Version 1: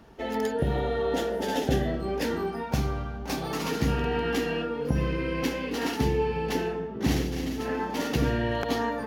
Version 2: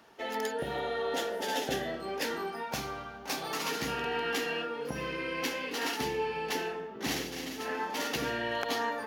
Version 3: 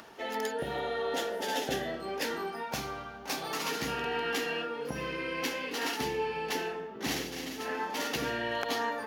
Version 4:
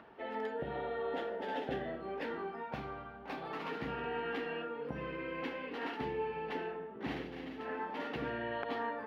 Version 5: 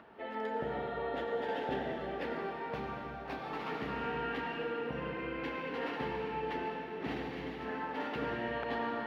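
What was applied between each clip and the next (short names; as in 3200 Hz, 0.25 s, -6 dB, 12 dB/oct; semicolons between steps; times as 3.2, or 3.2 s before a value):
HPF 920 Hz 6 dB/oct; gain +1 dB
upward compressor, threshold -44 dBFS
air absorption 490 m; gain -3 dB
reverb RT60 3.3 s, pre-delay 83 ms, DRR 1.5 dB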